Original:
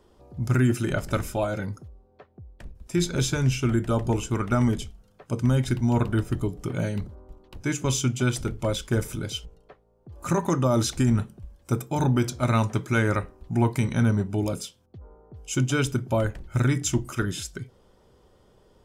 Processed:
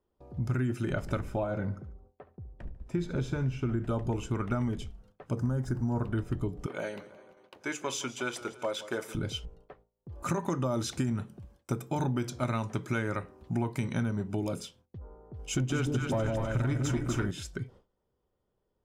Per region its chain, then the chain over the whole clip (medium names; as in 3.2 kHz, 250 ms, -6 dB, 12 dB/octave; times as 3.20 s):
1.20–3.85 s: treble shelf 2.7 kHz -10.5 dB + feedback delay 72 ms, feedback 46%, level -16 dB
5.37–6.05 s: jump at every zero crossing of -39.5 dBFS + high-order bell 2.9 kHz -14.5 dB 1.2 oct
6.66–9.15 s: high-pass 480 Hz + modulated delay 169 ms, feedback 57%, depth 71 cents, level -17 dB
10.23–14.60 s: high-pass 100 Hz + treble shelf 3.2 kHz +6 dB
15.39–17.31 s: waveshaping leveller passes 1 + two-band feedback delay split 760 Hz, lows 152 ms, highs 251 ms, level -3.5 dB
whole clip: gate with hold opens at -46 dBFS; treble shelf 4.2 kHz -11 dB; compression 4:1, threshold -28 dBFS